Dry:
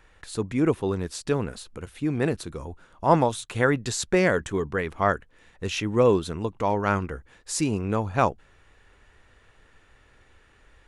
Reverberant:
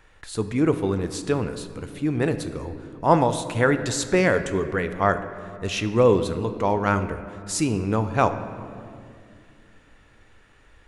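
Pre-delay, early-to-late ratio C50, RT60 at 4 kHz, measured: 6 ms, 11.0 dB, 1.4 s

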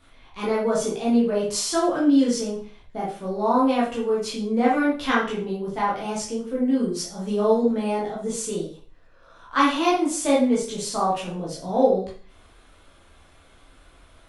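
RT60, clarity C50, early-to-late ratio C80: 0.40 s, 4.0 dB, 9.0 dB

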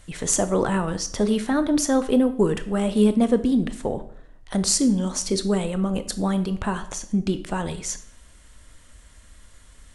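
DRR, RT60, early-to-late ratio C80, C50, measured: 10.5 dB, 0.60 s, 17.0 dB, 14.0 dB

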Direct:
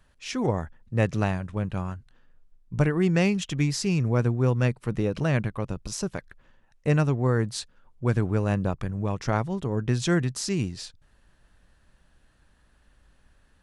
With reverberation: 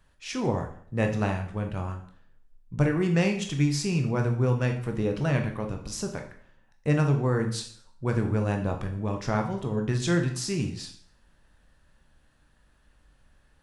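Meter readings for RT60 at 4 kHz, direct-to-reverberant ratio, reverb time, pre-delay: 0.55 s, 3.5 dB, 0.55 s, 7 ms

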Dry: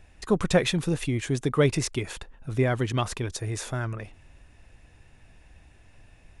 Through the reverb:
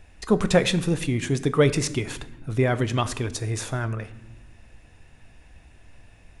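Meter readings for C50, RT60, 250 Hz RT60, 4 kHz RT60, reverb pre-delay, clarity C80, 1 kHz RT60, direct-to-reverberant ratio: 15.5 dB, 1.0 s, 1.9 s, 0.70 s, 4 ms, 17.5 dB, 0.85 s, 11.5 dB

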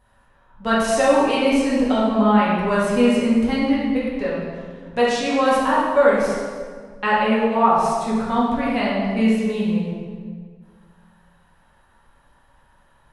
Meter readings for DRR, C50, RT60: −8.0 dB, −1.0 dB, 1.7 s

